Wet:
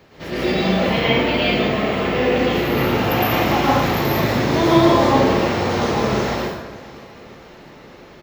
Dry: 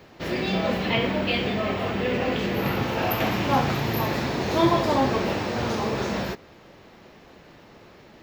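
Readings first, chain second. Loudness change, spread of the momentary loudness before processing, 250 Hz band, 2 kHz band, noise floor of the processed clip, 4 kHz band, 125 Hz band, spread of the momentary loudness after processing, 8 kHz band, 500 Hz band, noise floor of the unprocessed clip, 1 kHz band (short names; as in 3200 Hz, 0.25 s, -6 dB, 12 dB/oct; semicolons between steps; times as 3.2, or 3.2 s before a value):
+7.0 dB, 6 LU, +7.0 dB, +6.5 dB, -43 dBFS, +6.5 dB, +6.0 dB, 9 LU, +6.5 dB, +7.5 dB, -50 dBFS, +6.5 dB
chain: on a send: feedback echo 0.569 s, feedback 45%, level -19.5 dB; on the sum: plate-style reverb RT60 1 s, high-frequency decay 0.75×, pre-delay 0.1 s, DRR -7 dB; gain -1 dB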